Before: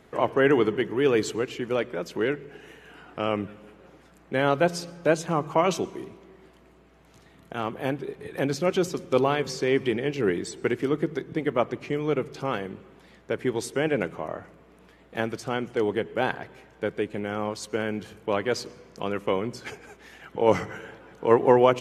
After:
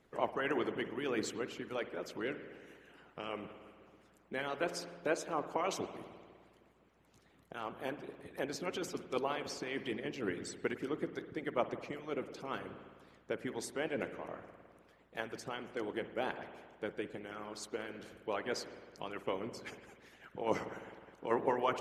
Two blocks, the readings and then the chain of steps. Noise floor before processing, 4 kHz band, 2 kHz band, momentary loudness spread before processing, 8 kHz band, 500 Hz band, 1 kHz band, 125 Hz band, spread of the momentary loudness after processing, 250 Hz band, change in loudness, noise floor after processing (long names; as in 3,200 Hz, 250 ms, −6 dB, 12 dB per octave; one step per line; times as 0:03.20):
−55 dBFS, −9.5 dB, −10.5 dB, 15 LU, −8.5 dB, −14.0 dB, −11.0 dB, −17.5 dB, 15 LU, −13.5 dB, −13.0 dB, −67 dBFS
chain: spring reverb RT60 1.8 s, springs 52 ms, chirp 65 ms, DRR 6.5 dB
harmonic and percussive parts rebalanced harmonic −16 dB
level −8 dB